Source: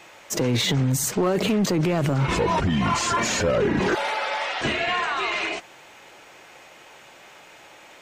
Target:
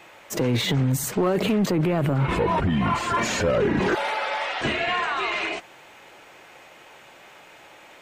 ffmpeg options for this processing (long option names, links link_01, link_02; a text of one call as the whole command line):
ffmpeg -i in.wav -af "asetnsamples=nb_out_samples=441:pad=0,asendcmd='1.71 equalizer g -14;3.14 equalizer g -4.5',equalizer=frequency=6000:width=1.1:gain=-6.5" out.wav